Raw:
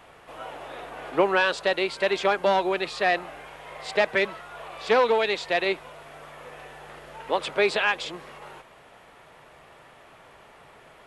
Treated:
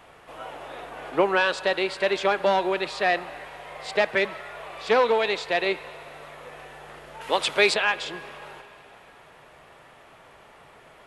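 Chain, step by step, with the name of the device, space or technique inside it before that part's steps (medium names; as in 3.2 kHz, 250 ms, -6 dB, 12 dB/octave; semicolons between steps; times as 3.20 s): filtered reverb send (on a send: high-pass 560 Hz + low-pass 4.2 kHz + reverberation RT60 3.6 s, pre-delay 12 ms, DRR 14.5 dB); 7.21–7.74 s: on the sum: treble shelf 2.1 kHz +10.5 dB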